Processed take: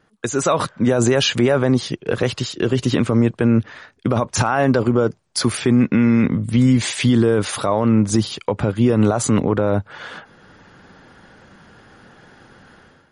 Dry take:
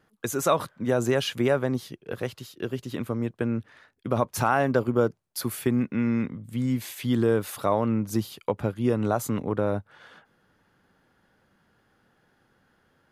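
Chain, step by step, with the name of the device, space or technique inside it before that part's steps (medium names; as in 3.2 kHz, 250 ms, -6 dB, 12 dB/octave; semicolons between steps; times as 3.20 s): low-bitrate web radio (level rider gain up to 13.5 dB; peak limiter -12.5 dBFS, peak gain reduction 11 dB; trim +6 dB; MP3 40 kbps 44.1 kHz)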